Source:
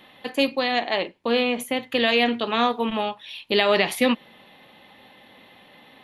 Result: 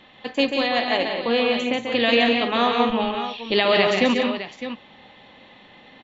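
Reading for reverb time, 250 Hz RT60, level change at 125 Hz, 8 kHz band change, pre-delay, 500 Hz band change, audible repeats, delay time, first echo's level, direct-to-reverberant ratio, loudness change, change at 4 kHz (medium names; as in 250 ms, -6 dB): no reverb, no reverb, +3.5 dB, no reading, no reverb, +2.5 dB, 4, 139 ms, -5.5 dB, no reverb, +2.0 dB, +2.0 dB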